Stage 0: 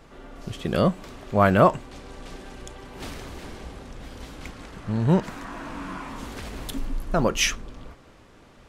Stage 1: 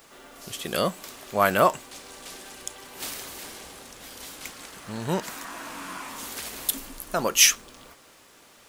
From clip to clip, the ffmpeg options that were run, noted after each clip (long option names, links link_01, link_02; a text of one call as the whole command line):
ffmpeg -i in.wav -af "aemphasis=mode=production:type=riaa,volume=-1dB" out.wav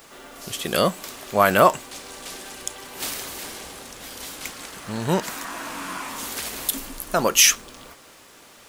ffmpeg -i in.wav -af "alimiter=level_in=6dB:limit=-1dB:release=50:level=0:latency=1,volume=-1dB" out.wav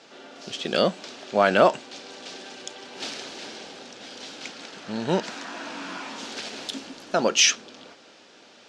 ffmpeg -i in.wav -af "highpass=210,equalizer=frequency=220:width_type=q:width=4:gain=3,equalizer=frequency=1100:width_type=q:width=4:gain=-9,equalizer=frequency=2000:width_type=q:width=4:gain=-5,lowpass=frequency=5600:width=0.5412,lowpass=frequency=5600:width=1.3066" out.wav